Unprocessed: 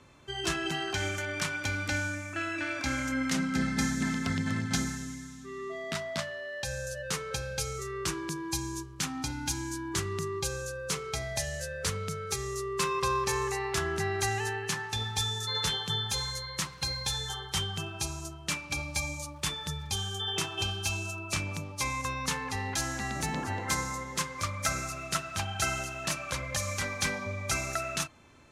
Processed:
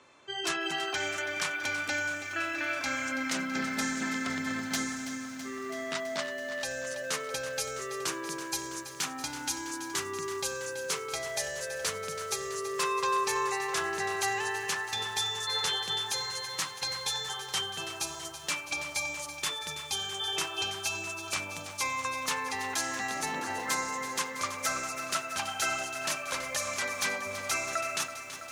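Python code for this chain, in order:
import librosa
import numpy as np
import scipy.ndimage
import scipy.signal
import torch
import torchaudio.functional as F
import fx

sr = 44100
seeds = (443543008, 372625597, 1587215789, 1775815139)

y = fx.low_shelf(x, sr, hz=84.0, db=-11.0)
y = 10.0 ** (-23.0 / 20.0) * (np.abs((y / 10.0 ** (-23.0 / 20.0) + 3.0) % 4.0 - 2.0) - 1.0)
y = fx.bass_treble(y, sr, bass_db=-14, treble_db=-1)
y = fx.spec_gate(y, sr, threshold_db=-30, keep='strong')
y = fx.echo_crushed(y, sr, ms=329, feedback_pct=80, bits=9, wet_db=-11.5)
y = F.gain(torch.from_numpy(y), 1.5).numpy()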